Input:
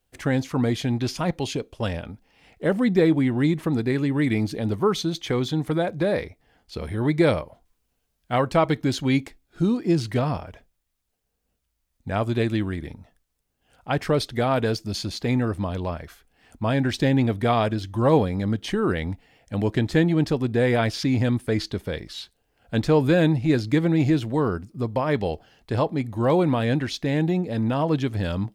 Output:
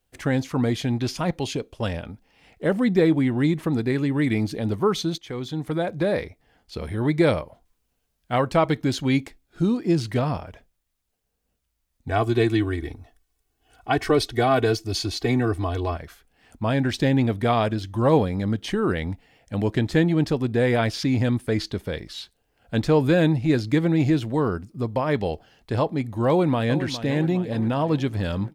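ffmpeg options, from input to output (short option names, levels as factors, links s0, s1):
-filter_complex "[0:a]asettb=1/sr,asplit=3[s0][s1][s2];[s0]atrim=end=12.084[s3];[s1]atrim=start=12.08:end=15.97,asetpts=PTS-STARTPTS,afade=t=in:d=0.004:c=qsin,afade=t=out:st=3.886:d=0.004:c=qsin,aecho=1:1:2.7:0.99,atrim=end_sample=171549[s4];[s2]atrim=start=15.966[s5];[s3][s4]acrossfade=d=0.004:c1=hsin:c2=qsin[s6];[s6][s5]acrossfade=d=0.004:c1=qsin:c2=hsin,asplit=2[s7][s8];[s8]afade=t=in:st=26.28:d=0.01,afade=t=out:st=26.86:d=0.01,aecho=0:1:410|820|1230|1640|2050|2460|2870:0.251189|0.150713|0.0904279|0.0542567|0.032554|0.0195324|0.0117195[s9];[s7][s9]amix=inputs=2:normalize=0,asplit=2[s10][s11];[s10]atrim=end=5.18,asetpts=PTS-STARTPTS,afade=t=out:st=5.176:d=0.004:c=hsin:silence=0.251189[s12];[s11]atrim=start=5.18,asetpts=PTS-STARTPTS,afade=t=in:d=0.79:silence=0.251189[s13];[s12][s13]concat=n=2:v=0:a=1"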